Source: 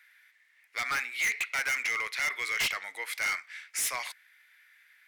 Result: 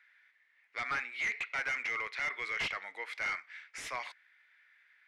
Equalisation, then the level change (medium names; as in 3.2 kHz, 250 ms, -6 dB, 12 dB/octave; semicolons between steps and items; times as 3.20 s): tape spacing loss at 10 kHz 23 dB; 0.0 dB